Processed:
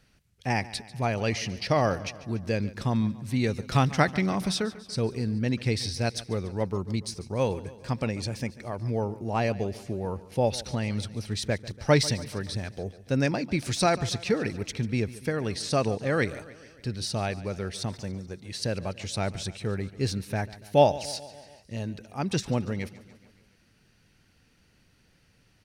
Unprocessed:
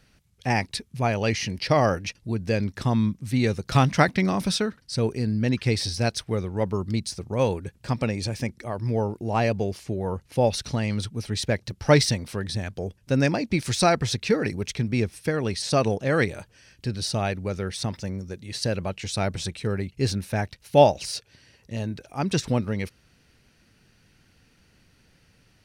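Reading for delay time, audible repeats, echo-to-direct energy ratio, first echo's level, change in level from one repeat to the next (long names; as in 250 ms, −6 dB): 143 ms, 4, −16.0 dB, −18.0 dB, −4.5 dB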